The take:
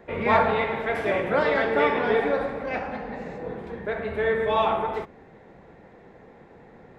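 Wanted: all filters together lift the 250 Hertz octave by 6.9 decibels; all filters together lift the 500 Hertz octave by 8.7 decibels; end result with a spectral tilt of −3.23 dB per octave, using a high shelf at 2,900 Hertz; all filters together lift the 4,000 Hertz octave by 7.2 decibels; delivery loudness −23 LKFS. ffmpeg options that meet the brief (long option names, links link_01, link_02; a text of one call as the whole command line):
ffmpeg -i in.wav -af "equalizer=frequency=250:width_type=o:gain=6,equalizer=frequency=500:width_type=o:gain=8.5,highshelf=frequency=2900:gain=5,equalizer=frequency=4000:width_type=o:gain=5,volume=-5dB" out.wav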